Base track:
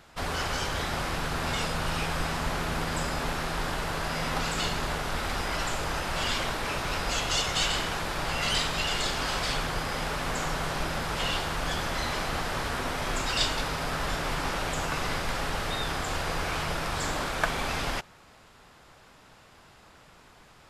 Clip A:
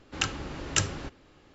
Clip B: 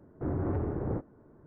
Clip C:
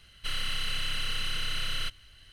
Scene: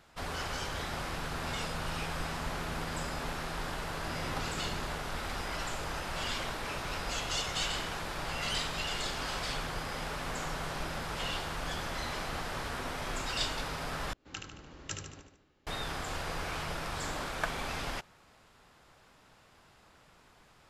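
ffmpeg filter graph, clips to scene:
ffmpeg -i bed.wav -i cue0.wav -i cue1.wav -filter_complex "[0:a]volume=-6.5dB[link_01];[2:a]flanger=delay=22.5:depth=5:speed=2.6[link_02];[1:a]aecho=1:1:74|148|222|296|370|444:0.531|0.271|0.138|0.0704|0.0359|0.0183[link_03];[link_01]asplit=2[link_04][link_05];[link_04]atrim=end=14.134[link_06];[link_03]atrim=end=1.54,asetpts=PTS-STARTPTS,volume=-14.5dB[link_07];[link_05]atrim=start=15.666[link_08];[link_02]atrim=end=1.46,asetpts=PTS-STARTPTS,volume=-11dB,afade=type=in:duration=0.004:curve=hsin,afade=type=out:start_time=1.456:duration=0.004:curve=hsin,adelay=3820[link_09];[link_06][link_07]acrossfade=duration=0.004:curve1=hsin:curve2=hsin[link_10];[link_10][link_08]acrossfade=duration=0.004:curve1=hsin:curve2=hsin[link_11];[link_11][link_09]amix=inputs=2:normalize=0" out.wav

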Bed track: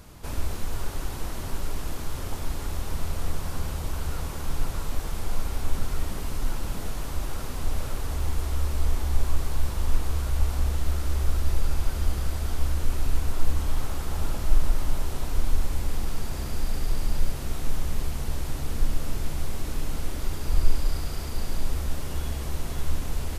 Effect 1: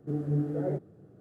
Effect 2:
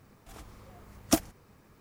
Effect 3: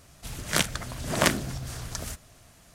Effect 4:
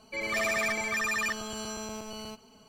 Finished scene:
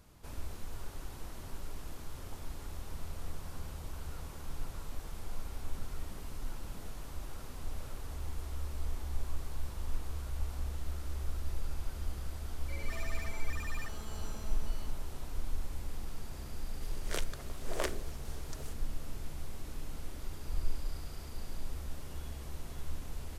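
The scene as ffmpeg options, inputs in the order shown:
ffmpeg -i bed.wav -i cue0.wav -i cue1.wav -i cue2.wav -i cue3.wav -filter_complex "[0:a]volume=-12.5dB[link_01];[4:a]asoftclip=type=tanh:threshold=-27.5dB[link_02];[3:a]highpass=frequency=410:width_type=q:width=3.5[link_03];[link_02]atrim=end=2.68,asetpts=PTS-STARTPTS,volume=-13.5dB,afade=type=in:duration=0.004:curve=hsin,afade=type=out:start_time=2.676:duration=0.004:curve=hsin,adelay=12560[link_04];[link_03]atrim=end=2.74,asetpts=PTS-STARTPTS,volume=-15.5dB,afade=type=in:duration=0.004:curve=hsin,afade=type=out:start_time=2.736:duration=0.004:curve=hsin,adelay=16580[link_05];[link_01][link_04][link_05]amix=inputs=3:normalize=0" out.wav

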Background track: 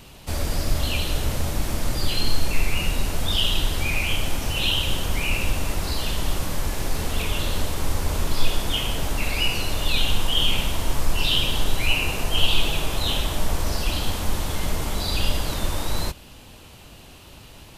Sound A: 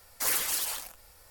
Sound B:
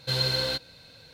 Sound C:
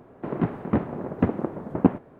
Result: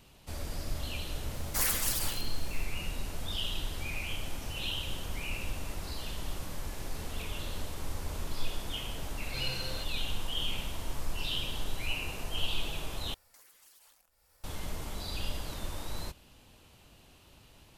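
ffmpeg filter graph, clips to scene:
ffmpeg -i bed.wav -i cue0.wav -i cue1.wav -filter_complex "[1:a]asplit=2[link_01][link_02];[0:a]volume=-13dB[link_03];[link_02]acompressor=threshold=-40dB:ratio=16:attack=0.32:release=389:knee=1:detection=rms[link_04];[link_03]asplit=2[link_05][link_06];[link_05]atrim=end=13.144[link_07];[link_04]atrim=end=1.3,asetpts=PTS-STARTPTS,volume=-10dB[link_08];[link_06]atrim=start=14.436[link_09];[link_01]atrim=end=1.3,asetpts=PTS-STARTPTS,volume=-2dB,afade=type=in:duration=0.004:curve=hsin,afade=type=out:start_time=1.296:duration=0.004:curve=hsin,adelay=1340[link_10];[2:a]atrim=end=1.13,asetpts=PTS-STARTPTS,volume=-13.5dB,afade=type=in:duration=0.004:curve=hsin,afade=type=out:start_time=1.126:duration=0.004:curve=hsin,adelay=9260[link_11];[link_07][link_08]acrossfade=duration=0.004:curve1=hsin:curve2=hsin[link_12];[link_12][link_09]acrossfade=duration=0.004:curve1=hsin:curve2=hsin[link_13];[link_13][link_10][link_11]amix=inputs=3:normalize=0" out.wav

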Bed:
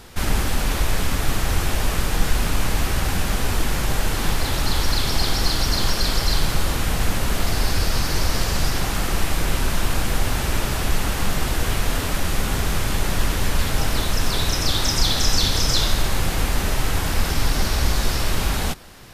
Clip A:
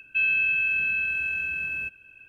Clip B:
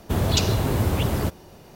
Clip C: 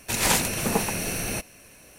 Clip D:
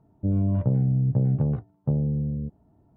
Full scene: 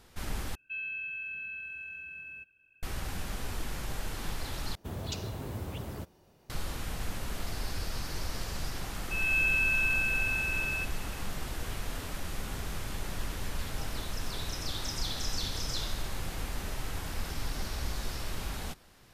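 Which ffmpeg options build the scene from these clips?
ffmpeg -i bed.wav -i cue0.wav -i cue1.wav -filter_complex "[1:a]asplit=2[link_01][link_02];[0:a]volume=-15dB[link_03];[link_02]dynaudnorm=framelen=200:gausssize=3:maxgain=11.5dB[link_04];[link_03]asplit=3[link_05][link_06][link_07];[link_05]atrim=end=0.554[link_08];[link_01]atrim=end=2.28,asetpts=PTS-STARTPTS,volume=-14.5dB[link_09];[link_06]atrim=start=2.826:end=4.754[link_10];[2:a]atrim=end=1.75,asetpts=PTS-STARTPTS,volume=-16dB[link_11];[link_07]atrim=start=6.496[link_12];[link_04]atrim=end=2.28,asetpts=PTS-STARTPTS,volume=-14.5dB,afade=type=in:duration=0.004:curve=hsin,afade=type=out:start_time=2.276:duration=0.004:curve=hsin,adelay=8960[link_13];[link_08][link_09]acrossfade=duration=0.004:curve1=hsin:curve2=hsin[link_14];[link_14][link_10]acrossfade=duration=0.004:curve1=hsin:curve2=hsin[link_15];[link_15][link_11]acrossfade=duration=0.004:curve1=hsin:curve2=hsin[link_16];[link_16][link_12]acrossfade=duration=0.004:curve1=hsin:curve2=hsin[link_17];[link_17][link_13]amix=inputs=2:normalize=0" out.wav

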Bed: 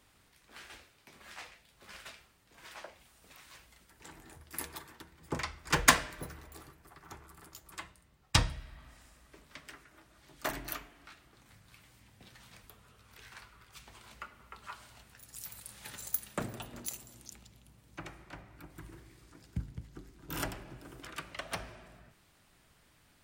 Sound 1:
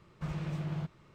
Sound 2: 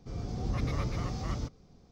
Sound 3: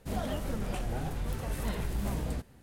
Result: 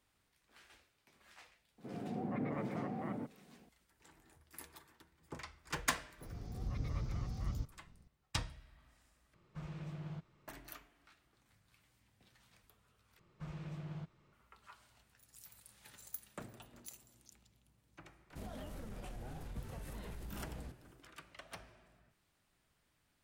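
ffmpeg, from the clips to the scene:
ffmpeg -i bed.wav -i cue0.wav -i cue1.wav -i cue2.wav -filter_complex "[2:a]asplit=2[link_01][link_02];[1:a]asplit=2[link_03][link_04];[0:a]volume=-12dB[link_05];[link_01]highpass=frequency=170:width=0.5412,highpass=frequency=170:width=1.3066,equalizer=frequency=230:width_type=q:width=4:gain=4,equalizer=frequency=760:width_type=q:width=4:gain=3,equalizer=frequency=1200:width_type=q:width=4:gain=-7,lowpass=frequency=2000:width=0.5412,lowpass=frequency=2000:width=1.3066[link_06];[link_02]asubboost=boost=5:cutoff=210[link_07];[3:a]acompressor=threshold=-35dB:ratio=6:attack=3.2:release=140:knee=1:detection=peak[link_08];[link_05]asplit=3[link_09][link_10][link_11];[link_09]atrim=end=9.344[link_12];[link_03]atrim=end=1.14,asetpts=PTS-STARTPTS,volume=-9.5dB[link_13];[link_10]atrim=start=10.476:end=13.194[link_14];[link_04]atrim=end=1.14,asetpts=PTS-STARTPTS,volume=-9.5dB[link_15];[link_11]atrim=start=14.326[link_16];[link_06]atrim=end=1.91,asetpts=PTS-STARTPTS,volume=-1.5dB,afade=type=in:duration=0.004:curve=hsin,afade=type=out:start_time=1.906:duration=0.004:curve=hsin,adelay=1780[link_17];[link_07]atrim=end=1.91,asetpts=PTS-STARTPTS,volume=-12dB,afade=type=in:duration=0.004:curve=hsin,afade=type=out:start_time=1.906:duration=0.004:curve=hsin,adelay=6170[link_18];[link_08]atrim=end=2.62,asetpts=PTS-STARTPTS,volume=-7.5dB,afade=type=in:duration=0.004:curve=hsin,afade=type=out:start_time=2.616:duration=0.004:curve=hsin,adelay=18300[link_19];[link_12][link_13]acrossfade=duration=0.004:curve1=hsin:curve2=hsin[link_20];[link_20][link_14]acrossfade=duration=0.004:curve1=hsin:curve2=hsin[link_21];[link_21][link_15]acrossfade=duration=0.004:curve1=hsin:curve2=hsin[link_22];[link_22][link_16]acrossfade=duration=0.004:curve1=hsin:curve2=hsin[link_23];[link_23][link_17][link_18][link_19]amix=inputs=4:normalize=0" out.wav

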